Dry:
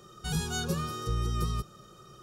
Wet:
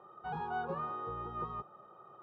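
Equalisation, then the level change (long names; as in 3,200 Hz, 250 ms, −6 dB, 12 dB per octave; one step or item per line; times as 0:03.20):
resonant band-pass 860 Hz, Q 3.5
high-frequency loss of the air 480 metres
+11.0 dB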